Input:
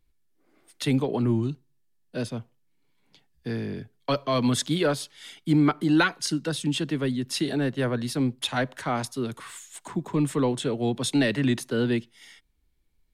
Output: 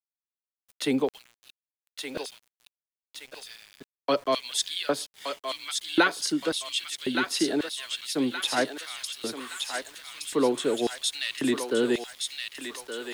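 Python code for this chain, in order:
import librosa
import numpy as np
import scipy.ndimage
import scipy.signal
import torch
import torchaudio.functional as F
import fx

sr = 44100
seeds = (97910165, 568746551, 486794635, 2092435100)

y = fx.filter_lfo_highpass(x, sr, shape='square', hz=0.92, low_hz=340.0, high_hz=3100.0, q=1.3)
y = fx.echo_thinned(y, sr, ms=1170, feedback_pct=57, hz=1100.0, wet_db=-3.5)
y = np.where(np.abs(y) >= 10.0 ** (-47.0 / 20.0), y, 0.0)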